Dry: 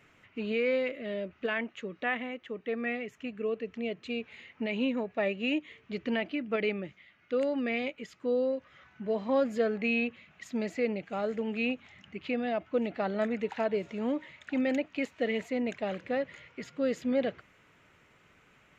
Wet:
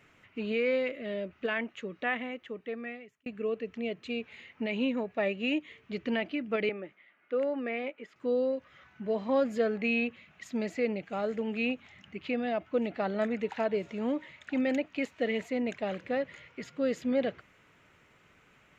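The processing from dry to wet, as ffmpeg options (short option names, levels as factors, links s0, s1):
-filter_complex "[0:a]asettb=1/sr,asplit=3[s0][s1][s2];[s0]atrim=end=6.694[s3];[s1]atrim=start=6.69:end=8.16,asetpts=PTS-STARTPTS,afade=t=in:d=0.004:c=qsin,afade=t=out:st=1.466:d=0.004:c=qsin,acrossover=split=240 2500:gain=0.1 1 0.178[s4][s5][s6];[s4][s5][s6]amix=inputs=3:normalize=0[s7];[s2]atrim=start=8.156[s8];[s3][s7]acrossfade=d=0.004:c1=hsin:c2=qsin[s9];[s9][s8]acrossfade=d=0.004:c1=qsin:c2=hsin,asplit=2[s10][s11];[s10]atrim=end=3.26,asetpts=PTS-STARTPTS,afade=t=out:st=2.4:d=0.86[s12];[s11]atrim=start=3.26,asetpts=PTS-STARTPTS,afade=t=in:d=0.004:c=hsin[s13];[s12][s13]concat=n=2:v=0:a=1"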